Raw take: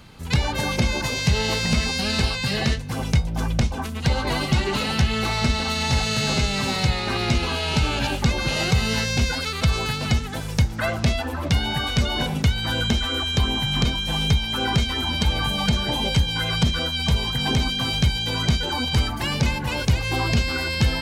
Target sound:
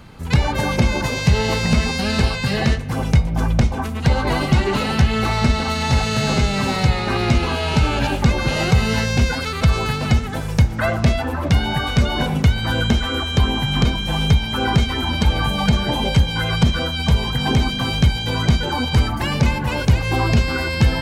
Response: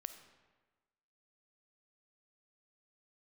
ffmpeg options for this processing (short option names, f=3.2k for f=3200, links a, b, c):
-filter_complex "[0:a]asplit=2[a][b];[1:a]atrim=start_sample=2205,lowpass=2.5k[c];[b][c]afir=irnorm=-1:irlink=0,volume=2dB[d];[a][d]amix=inputs=2:normalize=0"